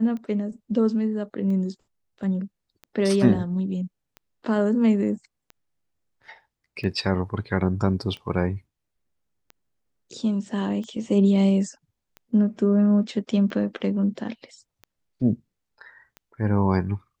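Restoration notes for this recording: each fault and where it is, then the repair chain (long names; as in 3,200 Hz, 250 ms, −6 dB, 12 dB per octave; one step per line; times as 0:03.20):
scratch tick 45 rpm −26 dBFS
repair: click removal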